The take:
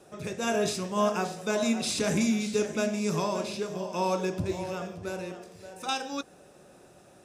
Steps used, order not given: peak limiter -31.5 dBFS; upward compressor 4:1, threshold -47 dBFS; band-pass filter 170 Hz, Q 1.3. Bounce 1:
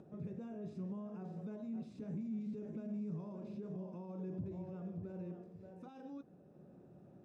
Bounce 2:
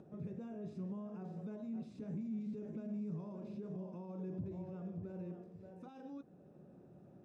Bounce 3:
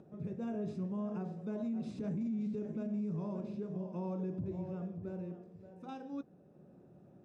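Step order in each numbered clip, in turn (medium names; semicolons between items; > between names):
upward compressor > peak limiter > band-pass filter; peak limiter > upward compressor > band-pass filter; upward compressor > band-pass filter > peak limiter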